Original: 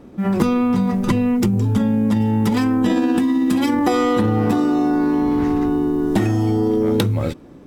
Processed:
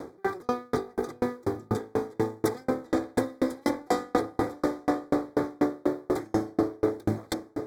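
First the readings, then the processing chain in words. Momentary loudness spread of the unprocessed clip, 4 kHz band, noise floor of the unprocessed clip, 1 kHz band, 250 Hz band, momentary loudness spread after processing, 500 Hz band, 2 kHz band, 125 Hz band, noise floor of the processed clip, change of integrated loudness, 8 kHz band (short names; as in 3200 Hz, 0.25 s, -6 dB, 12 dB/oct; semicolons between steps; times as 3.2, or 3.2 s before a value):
2 LU, -12.0 dB, -41 dBFS, -7.5 dB, -14.0 dB, 5 LU, -6.0 dB, -8.5 dB, -17.5 dB, -56 dBFS, -11.5 dB, -7.5 dB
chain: minimum comb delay 2.5 ms; HPF 150 Hz 12 dB/oct; in parallel at -2 dB: negative-ratio compressor -33 dBFS, ratio -1; on the sum: hard clip -14 dBFS, distortion -20 dB; Butterworth band-stop 2800 Hz, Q 2; on a send: diffused feedback echo 0.937 s, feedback 43%, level -8.5 dB; on the sum: dB-ramp tremolo decaying 4.1 Hz, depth 40 dB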